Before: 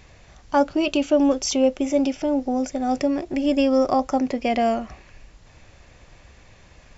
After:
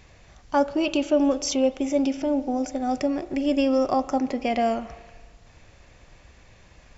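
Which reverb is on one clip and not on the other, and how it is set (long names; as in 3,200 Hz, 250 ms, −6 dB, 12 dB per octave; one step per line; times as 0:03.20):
spring reverb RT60 1.5 s, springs 37 ms, chirp 45 ms, DRR 14 dB
level −2.5 dB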